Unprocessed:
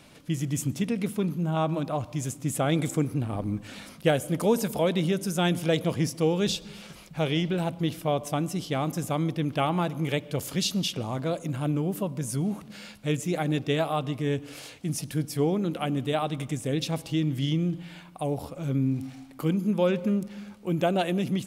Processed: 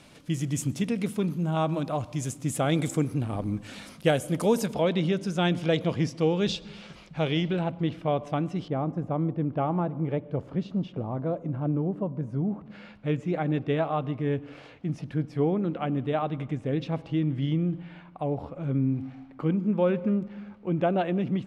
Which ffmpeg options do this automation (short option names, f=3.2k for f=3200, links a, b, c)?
-af "asetnsamples=n=441:p=0,asendcmd='4.66 lowpass f 4500;7.59 lowpass f 2600;8.68 lowpass f 1000;12.66 lowpass f 2000',lowpass=11k"